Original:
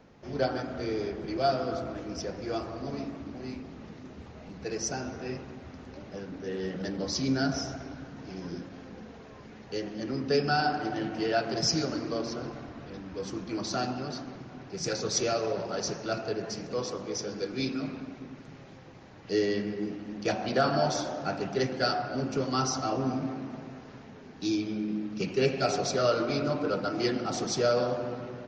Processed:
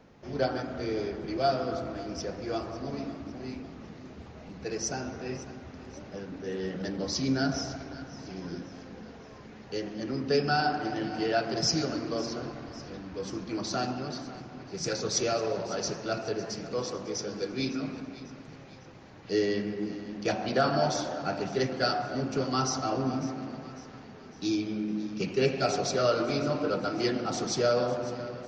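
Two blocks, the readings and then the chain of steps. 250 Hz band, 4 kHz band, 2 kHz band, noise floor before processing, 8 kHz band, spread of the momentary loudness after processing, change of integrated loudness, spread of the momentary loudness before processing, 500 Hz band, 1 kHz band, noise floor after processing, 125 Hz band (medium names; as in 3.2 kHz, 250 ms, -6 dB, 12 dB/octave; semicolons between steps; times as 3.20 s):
0.0 dB, 0.0 dB, 0.0 dB, -48 dBFS, 0.0 dB, 18 LU, 0.0 dB, 18 LU, 0.0 dB, 0.0 dB, -48 dBFS, 0.0 dB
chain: thinning echo 552 ms, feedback 48%, level -16.5 dB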